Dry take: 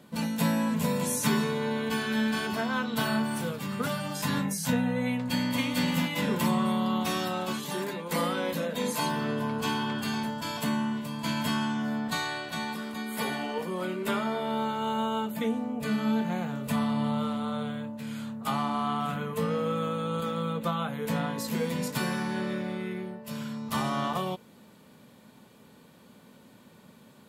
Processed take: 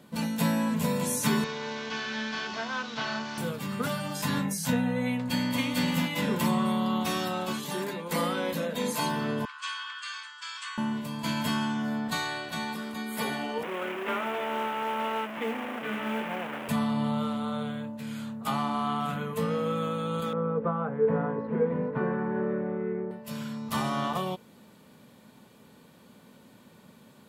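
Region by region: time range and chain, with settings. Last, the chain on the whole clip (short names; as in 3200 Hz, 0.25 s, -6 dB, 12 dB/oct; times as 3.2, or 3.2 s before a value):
1.44–3.38 delta modulation 32 kbps, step -35.5 dBFS + low shelf 490 Hz -11.5 dB
9.45–10.78 Chebyshev band-pass 1100–8800 Hz, order 5 + high shelf 5800 Hz -4.5 dB
13.63–16.69 delta modulation 16 kbps, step -27 dBFS + HPF 320 Hz + companded quantiser 6-bit
20.33–23.11 LPF 1600 Hz 24 dB/oct + bell 440 Hz +13 dB 0.26 oct
whole clip: dry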